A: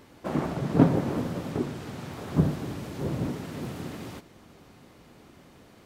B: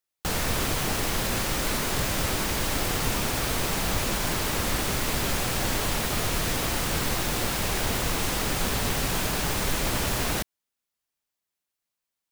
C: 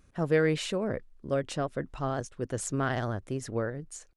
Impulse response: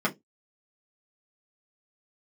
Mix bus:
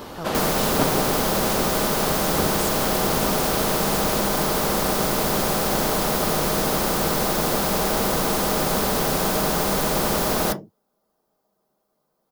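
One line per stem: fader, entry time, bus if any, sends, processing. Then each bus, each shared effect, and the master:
+0.5 dB, 0.00 s, send -14.5 dB, dry
+1.5 dB, 0.10 s, send -7.5 dB, EQ curve 630 Hz 0 dB, 3000 Hz -19 dB, 4700 Hz -15 dB
-9.0 dB, 0.00 s, no send, dry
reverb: on, RT60 0.15 s, pre-delay 3 ms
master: graphic EQ 250/2000/8000 Hz -9/-11/-6 dB; spectral compressor 2:1

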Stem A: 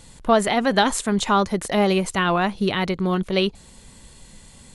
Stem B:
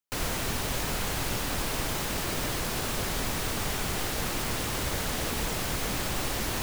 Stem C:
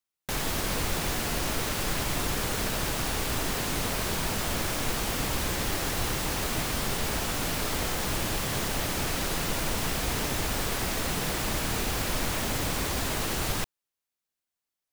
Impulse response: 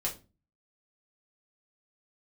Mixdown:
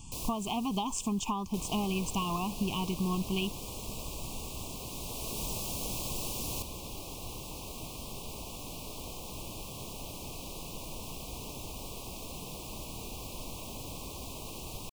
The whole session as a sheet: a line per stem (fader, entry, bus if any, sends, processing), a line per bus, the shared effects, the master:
+1.0 dB, 0.00 s, bus A, no send, fixed phaser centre 2700 Hz, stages 8
-9.5 dB, 0.00 s, bus A, no send, tone controls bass +2 dB, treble +7 dB; auto duck -12 dB, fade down 1.60 s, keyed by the first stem
-12.0 dB, 1.25 s, no bus, no send, dry
bus A: 0.0 dB, compressor 12:1, threshold -28 dBFS, peak gain reduction 14 dB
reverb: off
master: elliptic band-stop 1100–2500 Hz, stop band 40 dB

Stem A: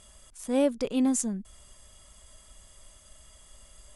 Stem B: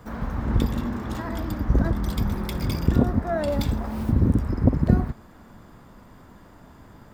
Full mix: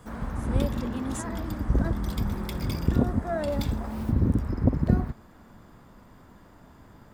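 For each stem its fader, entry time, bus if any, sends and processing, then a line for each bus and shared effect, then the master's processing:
-9.5 dB, 0.00 s, no send, dry
-3.5 dB, 0.00 s, no send, dry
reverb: off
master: dry

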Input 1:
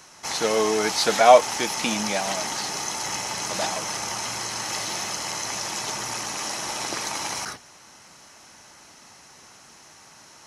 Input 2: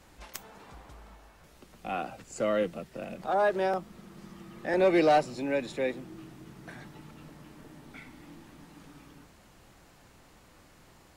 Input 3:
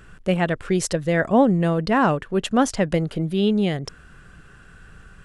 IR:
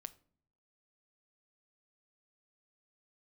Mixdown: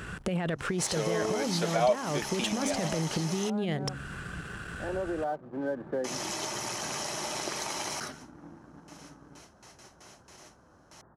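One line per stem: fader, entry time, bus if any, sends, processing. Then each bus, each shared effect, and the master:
-4.0 dB, 0.55 s, muted 3.5–6.04, no bus, no send, gate with hold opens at -38 dBFS; small resonant body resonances 380/600/3100 Hz, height 8 dB
+2.0 dB, 0.15 s, bus A, no send, elliptic low-pass 1600 Hz; auto duck -11 dB, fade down 0.20 s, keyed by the third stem
+2.0 dB, 0.00 s, bus A, no send, de-hum 68.73 Hz, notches 4; negative-ratio compressor -24 dBFS, ratio -1
bus A: 0.0 dB, sample leveller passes 1; compressor, threshold -22 dBFS, peak gain reduction 8.5 dB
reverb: off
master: HPF 58 Hz; compressor 2:1, threshold -32 dBFS, peak gain reduction 13.5 dB

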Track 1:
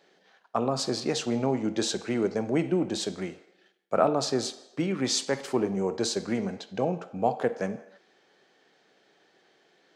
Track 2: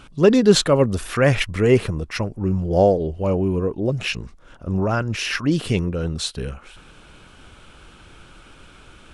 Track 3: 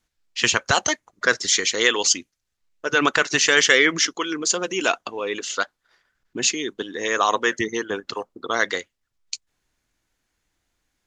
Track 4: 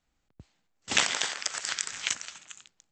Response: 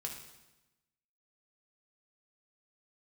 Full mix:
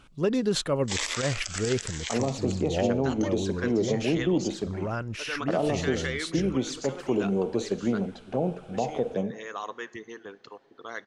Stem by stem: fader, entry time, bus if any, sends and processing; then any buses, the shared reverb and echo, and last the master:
+2.0 dB, 1.55 s, send -13 dB, high shelf 2200 Hz -11.5 dB; envelope flanger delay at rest 7.8 ms, full sweep at -26 dBFS
-10.0 dB, 0.00 s, no send, dry
-16.5 dB, 2.35 s, send -13.5 dB, high shelf 3600 Hz -8 dB
+1.0 dB, 0.00 s, no send, steep high-pass 290 Hz; cascading phaser rising 0.83 Hz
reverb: on, RT60 1.0 s, pre-delay 3 ms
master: limiter -15.5 dBFS, peak gain reduction 10 dB

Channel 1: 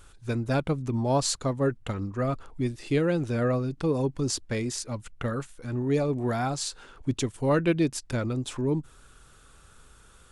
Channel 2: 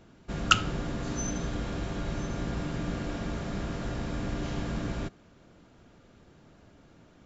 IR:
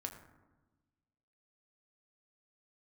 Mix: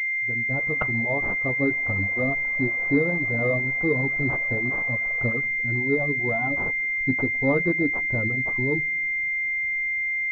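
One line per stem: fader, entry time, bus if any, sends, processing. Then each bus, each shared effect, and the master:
-9.5 dB, 0.00 s, send -3.5 dB, flange 0.21 Hz, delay 7.3 ms, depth 4.5 ms, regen +48%
-3.0 dB, 0.30 s, no send, elliptic high-pass 490 Hz; auto duck -6 dB, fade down 1.85 s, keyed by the first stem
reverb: on, RT60 1.2 s, pre-delay 5 ms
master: reverb removal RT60 0.94 s; AGC gain up to 12 dB; pulse-width modulation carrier 2100 Hz

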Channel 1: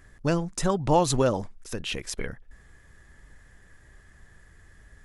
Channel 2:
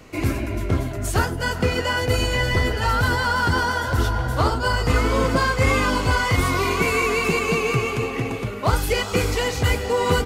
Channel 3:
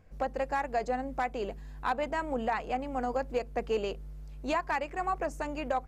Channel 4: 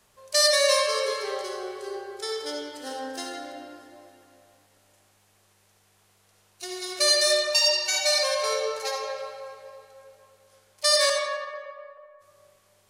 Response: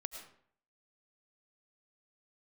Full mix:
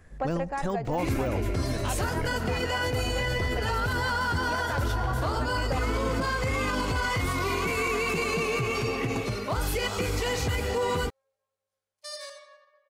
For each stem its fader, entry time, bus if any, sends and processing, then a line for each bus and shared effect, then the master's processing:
-3.5 dB, 0.00 s, no send, de-esser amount 100%
-3.0 dB, 0.85 s, send -15 dB, dry
+2.0 dB, 0.00 s, send -13 dB, high shelf 5200 Hz -11.5 dB; auto duck -7 dB, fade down 0.75 s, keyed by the first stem
-18.0 dB, 1.20 s, no send, upward expander 1.5:1, over -39 dBFS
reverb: on, RT60 0.60 s, pre-delay 65 ms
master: limiter -19 dBFS, peak gain reduction 10.5 dB

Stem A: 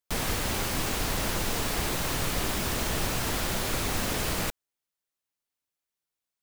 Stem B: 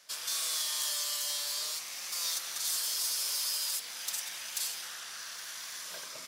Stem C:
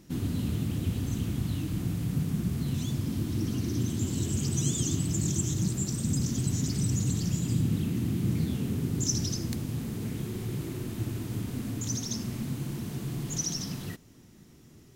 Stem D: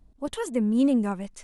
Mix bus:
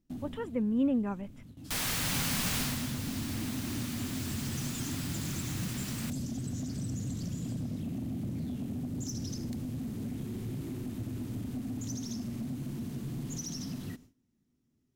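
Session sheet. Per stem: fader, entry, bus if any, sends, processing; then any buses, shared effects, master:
2.59 s -8 dB -> 2.9 s -18.5 dB, 1.60 s, no send, tilt shelf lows -8.5 dB, about 750 Hz
-19.0 dB, 1.55 s, no send, dry
-5.5 dB, 0.00 s, no send, bell 250 Hz +10.5 dB 0.35 oct; compressor 4:1, threshold -27 dBFS, peak gain reduction 7.5 dB; soft clip -26 dBFS, distortion -16 dB; auto duck -15 dB, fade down 0.60 s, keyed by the fourth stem
-7.5 dB, 0.00 s, no send, polynomial smoothing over 25 samples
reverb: off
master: gate with hold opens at -45 dBFS; low shelf 160 Hz +4.5 dB

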